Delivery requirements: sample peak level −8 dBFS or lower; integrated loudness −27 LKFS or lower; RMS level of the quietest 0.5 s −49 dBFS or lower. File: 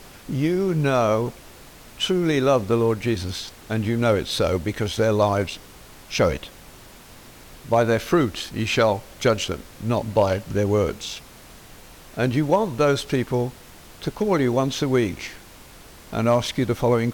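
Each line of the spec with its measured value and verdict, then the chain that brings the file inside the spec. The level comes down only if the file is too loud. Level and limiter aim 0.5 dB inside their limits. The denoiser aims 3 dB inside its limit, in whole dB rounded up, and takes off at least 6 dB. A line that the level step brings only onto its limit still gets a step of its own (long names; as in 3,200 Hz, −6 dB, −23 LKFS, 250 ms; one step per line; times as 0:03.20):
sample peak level −6.5 dBFS: out of spec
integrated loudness −22.5 LKFS: out of spec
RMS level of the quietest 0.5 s −45 dBFS: out of spec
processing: level −5 dB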